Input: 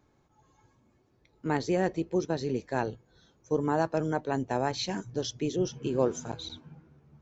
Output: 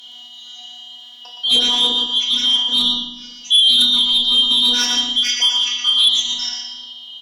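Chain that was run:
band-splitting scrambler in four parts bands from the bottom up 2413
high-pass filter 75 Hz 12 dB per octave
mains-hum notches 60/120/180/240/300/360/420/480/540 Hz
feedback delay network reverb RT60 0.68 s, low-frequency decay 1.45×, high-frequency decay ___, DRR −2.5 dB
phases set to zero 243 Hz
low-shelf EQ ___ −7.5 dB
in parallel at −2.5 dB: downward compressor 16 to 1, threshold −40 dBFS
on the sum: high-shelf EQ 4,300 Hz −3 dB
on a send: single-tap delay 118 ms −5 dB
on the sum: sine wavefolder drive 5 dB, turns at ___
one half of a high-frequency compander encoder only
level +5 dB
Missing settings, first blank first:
0.85×, 230 Hz, −11.5 dBFS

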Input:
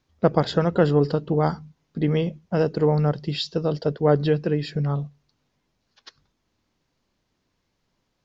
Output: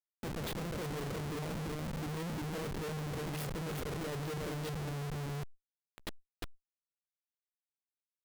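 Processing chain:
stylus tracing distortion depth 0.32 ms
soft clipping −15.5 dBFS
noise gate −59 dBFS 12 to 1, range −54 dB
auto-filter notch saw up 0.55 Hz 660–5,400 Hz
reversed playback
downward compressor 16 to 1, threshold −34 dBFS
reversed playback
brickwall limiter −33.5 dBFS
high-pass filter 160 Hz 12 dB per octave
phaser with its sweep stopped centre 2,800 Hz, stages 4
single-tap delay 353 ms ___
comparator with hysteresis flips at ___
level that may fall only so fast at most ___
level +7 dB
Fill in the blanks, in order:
−4.5 dB, −49 dBFS, 120 dB per second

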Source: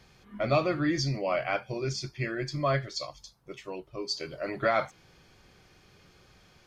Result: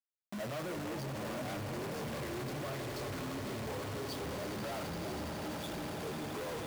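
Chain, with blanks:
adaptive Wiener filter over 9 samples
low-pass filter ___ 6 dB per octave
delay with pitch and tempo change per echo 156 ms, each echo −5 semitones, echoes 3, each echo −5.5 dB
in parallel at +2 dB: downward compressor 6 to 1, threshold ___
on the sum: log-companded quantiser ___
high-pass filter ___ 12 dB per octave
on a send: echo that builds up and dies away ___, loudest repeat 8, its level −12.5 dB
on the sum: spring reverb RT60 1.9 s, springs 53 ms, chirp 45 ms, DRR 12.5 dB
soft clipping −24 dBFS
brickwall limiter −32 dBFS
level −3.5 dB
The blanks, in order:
1,100 Hz, −37 dBFS, 2 bits, 89 Hz, 83 ms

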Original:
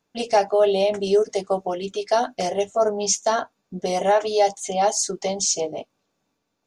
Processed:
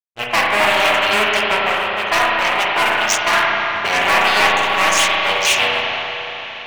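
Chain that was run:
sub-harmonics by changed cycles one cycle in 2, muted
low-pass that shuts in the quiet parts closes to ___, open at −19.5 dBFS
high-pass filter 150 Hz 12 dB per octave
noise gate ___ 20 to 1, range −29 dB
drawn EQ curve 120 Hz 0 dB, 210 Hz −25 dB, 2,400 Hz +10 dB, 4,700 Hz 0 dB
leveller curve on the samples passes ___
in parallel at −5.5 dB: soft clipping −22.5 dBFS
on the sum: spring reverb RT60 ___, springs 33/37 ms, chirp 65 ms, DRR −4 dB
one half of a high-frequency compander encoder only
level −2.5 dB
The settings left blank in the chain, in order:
320 Hz, −44 dBFS, 3, 3.6 s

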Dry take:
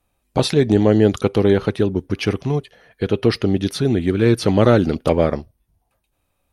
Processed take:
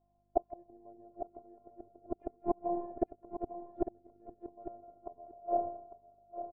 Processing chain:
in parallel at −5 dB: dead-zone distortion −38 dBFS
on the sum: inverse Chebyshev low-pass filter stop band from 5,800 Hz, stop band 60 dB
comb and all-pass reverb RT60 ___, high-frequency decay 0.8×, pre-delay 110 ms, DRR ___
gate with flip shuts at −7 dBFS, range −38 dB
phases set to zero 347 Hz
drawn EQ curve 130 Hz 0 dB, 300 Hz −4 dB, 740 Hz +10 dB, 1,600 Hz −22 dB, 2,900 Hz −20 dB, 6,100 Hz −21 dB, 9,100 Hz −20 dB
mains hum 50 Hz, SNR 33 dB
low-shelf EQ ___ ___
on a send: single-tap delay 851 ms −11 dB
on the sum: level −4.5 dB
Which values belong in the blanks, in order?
0.72 s, 6.5 dB, 130 Hz, −8.5 dB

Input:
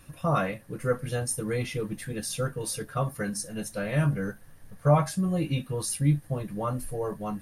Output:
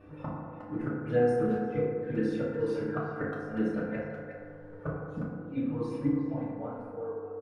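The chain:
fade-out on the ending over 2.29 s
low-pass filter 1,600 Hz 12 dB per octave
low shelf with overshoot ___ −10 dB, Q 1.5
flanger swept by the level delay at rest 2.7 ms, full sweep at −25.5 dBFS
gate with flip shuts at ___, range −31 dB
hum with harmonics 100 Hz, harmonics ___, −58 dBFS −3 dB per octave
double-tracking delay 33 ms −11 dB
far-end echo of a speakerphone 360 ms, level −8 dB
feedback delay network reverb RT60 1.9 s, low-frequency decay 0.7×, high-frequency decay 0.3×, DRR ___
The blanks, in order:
160 Hz, −24 dBFS, 6, −6.5 dB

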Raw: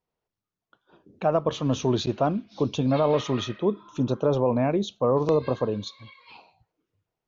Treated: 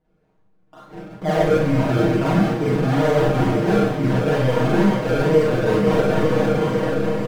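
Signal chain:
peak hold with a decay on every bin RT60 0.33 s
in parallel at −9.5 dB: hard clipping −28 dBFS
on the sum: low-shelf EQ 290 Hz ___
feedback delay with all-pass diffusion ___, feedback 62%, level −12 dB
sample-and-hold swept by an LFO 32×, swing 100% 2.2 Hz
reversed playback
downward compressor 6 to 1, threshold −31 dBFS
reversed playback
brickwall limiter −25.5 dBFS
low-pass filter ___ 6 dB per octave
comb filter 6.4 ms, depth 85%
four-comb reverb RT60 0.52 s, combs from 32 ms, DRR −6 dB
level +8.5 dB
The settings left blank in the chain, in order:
+4.5 dB, 481 ms, 1,200 Hz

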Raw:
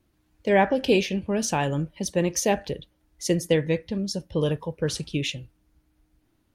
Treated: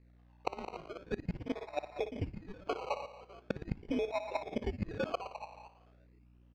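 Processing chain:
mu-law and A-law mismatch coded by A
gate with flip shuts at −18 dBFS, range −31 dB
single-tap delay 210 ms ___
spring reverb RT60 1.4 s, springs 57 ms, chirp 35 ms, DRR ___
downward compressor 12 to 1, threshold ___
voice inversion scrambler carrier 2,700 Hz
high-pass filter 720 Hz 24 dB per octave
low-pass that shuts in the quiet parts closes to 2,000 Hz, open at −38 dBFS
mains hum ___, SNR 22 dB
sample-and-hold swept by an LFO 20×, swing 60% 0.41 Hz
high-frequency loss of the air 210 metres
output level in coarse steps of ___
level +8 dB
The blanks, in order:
−6.5 dB, 9.5 dB, −34 dBFS, 60 Hz, 10 dB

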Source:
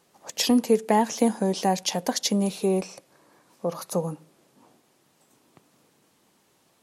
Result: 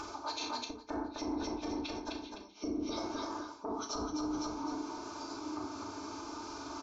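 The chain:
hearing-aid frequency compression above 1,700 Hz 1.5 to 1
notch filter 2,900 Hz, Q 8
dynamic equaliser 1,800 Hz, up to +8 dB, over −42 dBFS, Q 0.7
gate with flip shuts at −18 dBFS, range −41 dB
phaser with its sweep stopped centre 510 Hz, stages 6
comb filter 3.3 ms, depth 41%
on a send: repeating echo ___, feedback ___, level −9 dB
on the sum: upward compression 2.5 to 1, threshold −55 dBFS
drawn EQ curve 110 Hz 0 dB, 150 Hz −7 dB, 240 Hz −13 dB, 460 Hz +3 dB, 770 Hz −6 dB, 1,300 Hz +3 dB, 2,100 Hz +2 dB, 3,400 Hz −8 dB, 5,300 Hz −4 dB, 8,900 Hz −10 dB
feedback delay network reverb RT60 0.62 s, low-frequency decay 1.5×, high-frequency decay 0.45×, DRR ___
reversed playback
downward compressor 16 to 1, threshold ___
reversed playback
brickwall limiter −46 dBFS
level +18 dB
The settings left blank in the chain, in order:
255 ms, 33%, −1.5 dB, −49 dBFS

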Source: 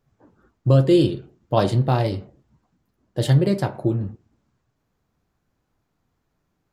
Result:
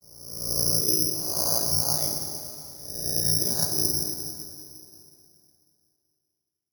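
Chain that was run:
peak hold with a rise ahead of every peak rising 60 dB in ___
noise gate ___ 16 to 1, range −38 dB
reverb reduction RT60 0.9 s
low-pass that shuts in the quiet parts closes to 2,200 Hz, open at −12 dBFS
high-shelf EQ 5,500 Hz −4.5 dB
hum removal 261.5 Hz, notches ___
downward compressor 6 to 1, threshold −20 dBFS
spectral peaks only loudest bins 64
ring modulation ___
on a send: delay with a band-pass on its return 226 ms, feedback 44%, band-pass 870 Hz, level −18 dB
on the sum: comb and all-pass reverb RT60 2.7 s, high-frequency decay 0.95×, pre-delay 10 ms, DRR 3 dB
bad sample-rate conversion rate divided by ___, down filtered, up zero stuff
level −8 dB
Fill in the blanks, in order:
1.05 s, −53 dBFS, 31, 29 Hz, 8×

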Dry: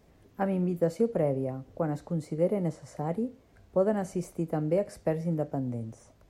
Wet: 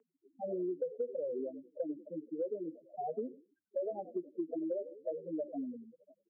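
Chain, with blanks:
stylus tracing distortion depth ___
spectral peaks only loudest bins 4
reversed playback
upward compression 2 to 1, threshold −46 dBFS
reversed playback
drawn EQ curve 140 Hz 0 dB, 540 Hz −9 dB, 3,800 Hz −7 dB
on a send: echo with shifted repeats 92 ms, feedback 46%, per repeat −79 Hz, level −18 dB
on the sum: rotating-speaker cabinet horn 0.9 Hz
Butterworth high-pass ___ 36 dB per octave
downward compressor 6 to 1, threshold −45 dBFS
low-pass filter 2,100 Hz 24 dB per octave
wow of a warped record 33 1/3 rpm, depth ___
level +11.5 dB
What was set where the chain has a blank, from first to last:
0.4 ms, 320 Hz, 100 cents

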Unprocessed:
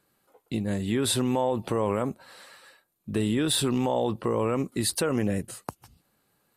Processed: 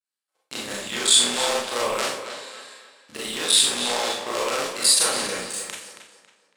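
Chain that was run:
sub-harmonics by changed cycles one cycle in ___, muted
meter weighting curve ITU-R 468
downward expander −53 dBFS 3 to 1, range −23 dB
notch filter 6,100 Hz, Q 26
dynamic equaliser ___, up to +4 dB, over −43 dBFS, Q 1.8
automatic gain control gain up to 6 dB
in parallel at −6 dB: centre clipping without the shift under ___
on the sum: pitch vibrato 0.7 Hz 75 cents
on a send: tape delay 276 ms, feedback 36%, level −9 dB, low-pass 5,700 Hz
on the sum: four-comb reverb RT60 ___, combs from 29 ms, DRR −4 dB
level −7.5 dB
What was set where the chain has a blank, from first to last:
3, 500 Hz, −23.5 dBFS, 0.46 s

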